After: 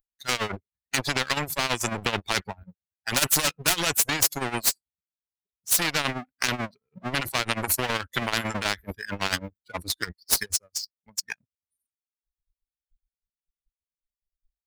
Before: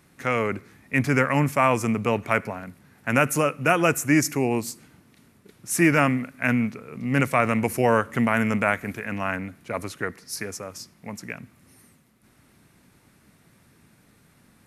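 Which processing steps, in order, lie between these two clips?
per-bin expansion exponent 2; 3.14–3.77 hard clip -22.5 dBFS, distortion -17 dB; 10.32–10.73 expander -51 dBFS; tremolo 9.2 Hz, depth 79%; spectral noise reduction 20 dB; 9.07–9.73 high shelf 3900 Hz +10 dB; power-law curve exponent 1.4; compressor 5:1, threshold -37 dBFS, peak gain reduction 16.5 dB; maximiser +34 dB; spectral compressor 4:1; gain -1 dB

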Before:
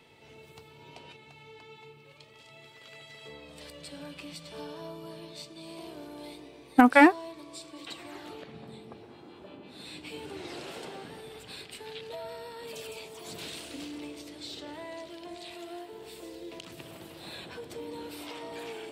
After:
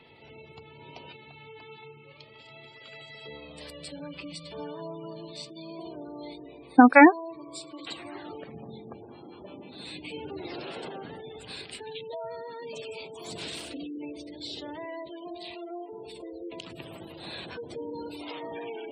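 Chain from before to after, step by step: spectral gate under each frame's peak -20 dB strong; gain +3.5 dB

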